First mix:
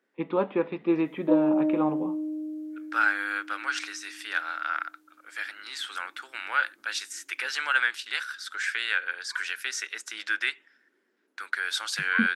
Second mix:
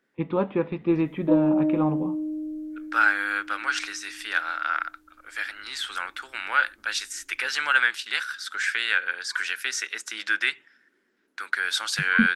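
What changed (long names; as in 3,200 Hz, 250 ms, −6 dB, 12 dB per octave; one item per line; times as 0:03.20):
second voice +3.5 dB
master: remove high-pass filter 270 Hz 12 dB per octave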